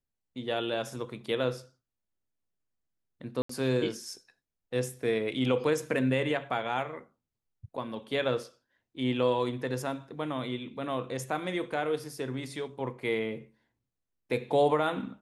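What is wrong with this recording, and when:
3.42–3.49 gap 74 ms

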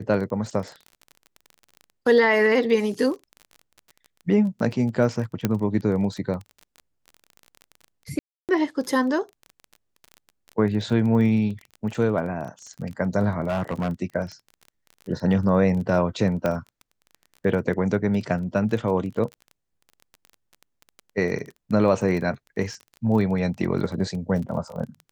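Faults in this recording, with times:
crackle 24/s -32 dBFS
5.45 pop -8 dBFS
8.19–8.49 gap 0.298 s
13.47–13.92 clipped -21 dBFS
16.46 pop -12 dBFS

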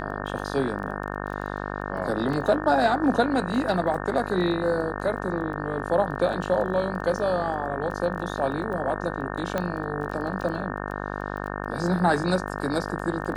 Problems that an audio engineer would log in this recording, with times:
buzz 50 Hz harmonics 36 -32 dBFS
crackle 14/s -34 dBFS
2.33 gap 4.1 ms
9.58 pop -13 dBFS

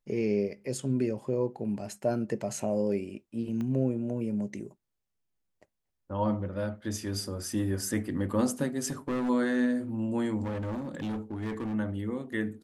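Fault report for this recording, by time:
3.61 pop -25 dBFS
8.86–9.3 clipped -27 dBFS
10.44–11.75 clipped -30.5 dBFS

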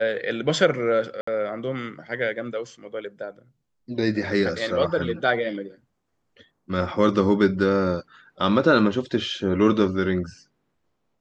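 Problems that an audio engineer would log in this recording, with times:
1.21–1.27 gap 64 ms

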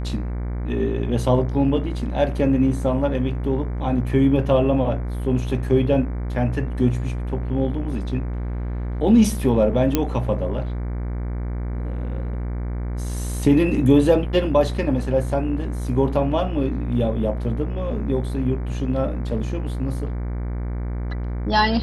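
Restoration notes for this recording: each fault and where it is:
buzz 60 Hz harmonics 39 -26 dBFS
9.95 pop -4 dBFS

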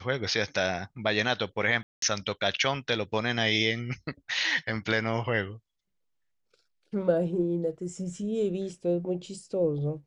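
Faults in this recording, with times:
1.83–2.02 gap 0.193 s

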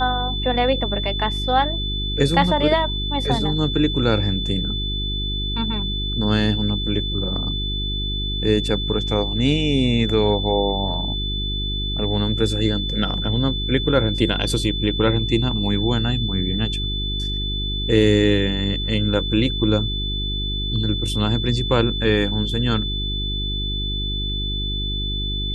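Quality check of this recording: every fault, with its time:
hum 50 Hz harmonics 8 -26 dBFS
tone 3500 Hz -26 dBFS

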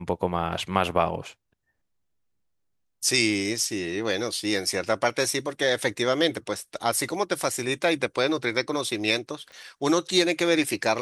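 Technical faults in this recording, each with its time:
9.52 pop -33 dBFS

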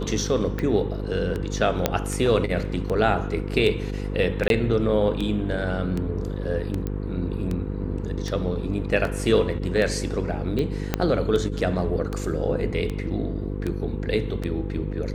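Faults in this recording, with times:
buzz 50 Hz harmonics 10 -29 dBFS
tick 78 rpm -16 dBFS
1.86 pop -5 dBFS
4.48–4.5 gap 22 ms
6.87 pop -17 dBFS
10.94 pop -7 dBFS

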